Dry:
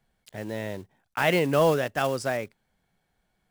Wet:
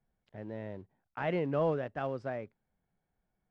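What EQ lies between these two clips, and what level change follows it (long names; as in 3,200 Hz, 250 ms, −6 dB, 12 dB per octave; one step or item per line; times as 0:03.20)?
head-to-tape spacing loss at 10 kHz 40 dB
−6.5 dB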